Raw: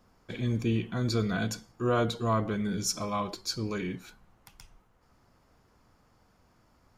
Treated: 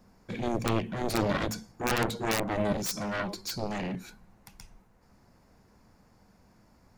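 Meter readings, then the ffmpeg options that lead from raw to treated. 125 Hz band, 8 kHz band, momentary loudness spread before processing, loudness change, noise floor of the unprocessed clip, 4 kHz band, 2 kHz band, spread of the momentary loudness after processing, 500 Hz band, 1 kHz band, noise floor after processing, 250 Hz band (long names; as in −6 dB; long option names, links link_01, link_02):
−4.0 dB, −0.5 dB, 7 LU, −0.5 dB, −66 dBFS, 0.0 dB, +4.0 dB, 7 LU, +0.5 dB, +1.0 dB, −62 dBFS, −1.0 dB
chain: -af "aeval=exprs='(mod(7.94*val(0)+1,2)-1)/7.94':channel_layout=same,equalizer=frequency=200:width_type=o:width=0.33:gain=7,equalizer=frequency=1250:width_type=o:width=0.33:gain=-6,equalizer=frequency=3150:width_type=o:width=0.33:gain=-7,aeval=exprs='0.188*(cos(1*acos(clip(val(0)/0.188,-1,1)))-cos(1*PI/2))+0.0841*(cos(7*acos(clip(val(0)/0.188,-1,1)))-cos(7*PI/2))':channel_layout=same,volume=-3.5dB"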